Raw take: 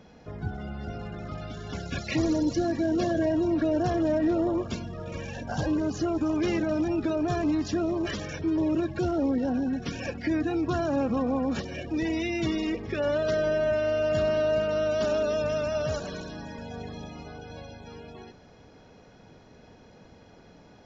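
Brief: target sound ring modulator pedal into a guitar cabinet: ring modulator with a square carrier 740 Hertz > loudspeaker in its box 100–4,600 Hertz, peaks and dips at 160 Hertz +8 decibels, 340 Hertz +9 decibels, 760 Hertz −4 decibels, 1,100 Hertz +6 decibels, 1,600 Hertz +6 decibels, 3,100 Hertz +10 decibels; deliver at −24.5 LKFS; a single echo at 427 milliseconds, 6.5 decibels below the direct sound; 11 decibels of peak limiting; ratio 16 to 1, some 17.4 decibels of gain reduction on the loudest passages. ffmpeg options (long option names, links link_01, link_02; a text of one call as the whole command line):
ffmpeg -i in.wav -af "acompressor=threshold=-40dB:ratio=16,alimiter=level_in=17.5dB:limit=-24dB:level=0:latency=1,volume=-17.5dB,aecho=1:1:427:0.473,aeval=exprs='val(0)*sgn(sin(2*PI*740*n/s))':channel_layout=same,highpass=100,equalizer=frequency=160:width_type=q:width=4:gain=8,equalizer=frequency=340:width_type=q:width=4:gain=9,equalizer=frequency=760:width_type=q:width=4:gain=-4,equalizer=frequency=1100:width_type=q:width=4:gain=6,equalizer=frequency=1600:width_type=q:width=4:gain=6,equalizer=frequency=3100:width_type=q:width=4:gain=10,lowpass=frequency=4600:width=0.5412,lowpass=frequency=4600:width=1.3066,volume=19dB" out.wav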